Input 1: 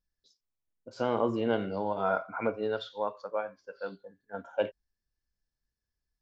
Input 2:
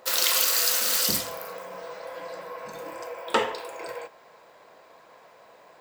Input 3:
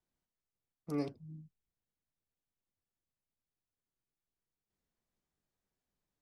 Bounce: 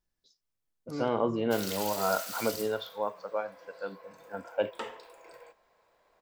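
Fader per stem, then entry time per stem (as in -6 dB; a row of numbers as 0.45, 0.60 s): 0.0, -15.5, -1.5 dB; 0.00, 1.45, 0.00 s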